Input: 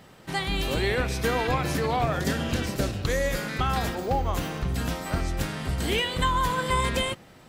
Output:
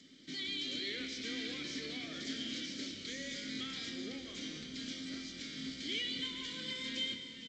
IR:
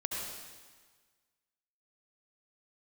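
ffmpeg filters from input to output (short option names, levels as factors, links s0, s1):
-filter_complex "[0:a]lowpass=5500,equalizer=f=2600:w=4.6:g=-2.5,bandreject=f=60:t=h:w=6,bandreject=f=120:t=h:w=6,bandreject=f=180:t=h:w=6,bandreject=f=240:t=h:w=6,bandreject=f=300:t=h:w=6,acrossover=split=410|3800[s0][s1][s2];[s0]acompressor=threshold=0.0178:ratio=16[s3];[s3][s1][s2]amix=inputs=3:normalize=0,asettb=1/sr,asplit=3[s4][s5][s6];[s4]atrim=end=5.014[s7];[s5]atrim=start=5.01:end=5.58,asetpts=PTS-STARTPTS,afade=t=in:d=0.004:c=qsin,afade=t=out:st=0.566:d=0.004:c=qsin,aeval=exprs='sgn(val(0))*max(abs(val(0))-0.00335,0)':c=same[s8];[s6]atrim=start=5.576[s9];[s7][s8]acrossfade=d=0.004:c1=hsin:c2=qsin[s10];[s10][s9]acrossfade=d=0.004:c1=qsin:c2=hsin,aexciter=amount=5.1:drive=9.4:freq=3900,asoftclip=type=tanh:threshold=0.0668,asplit=3[s11][s12][s13];[s11]bandpass=f=270:t=q:w=8,volume=1[s14];[s12]bandpass=f=2290:t=q:w=8,volume=0.501[s15];[s13]bandpass=f=3010:t=q:w=8,volume=0.355[s16];[s14][s15][s16]amix=inputs=3:normalize=0,asplit=6[s17][s18][s19][s20][s21][s22];[s18]adelay=452,afreqshift=-41,volume=0.224[s23];[s19]adelay=904,afreqshift=-82,volume=0.11[s24];[s20]adelay=1356,afreqshift=-123,volume=0.0537[s25];[s21]adelay=1808,afreqshift=-164,volume=0.0263[s26];[s22]adelay=2260,afreqshift=-205,volume=0.0129[s27];[s17][s23][s24][s25][s26][s27]amix=inputs=6:normalize=0,asplit=2[s28][s29];[1:a]atrim=start_sample=2205,adelay=27[s30];[s29][s30]afir=irnorm=-1:irlink=0,volume=0.299[s31];[s28][s31]amix=inputs=2:normalize=0,volume=1.5" -ar 16000 -c:a g722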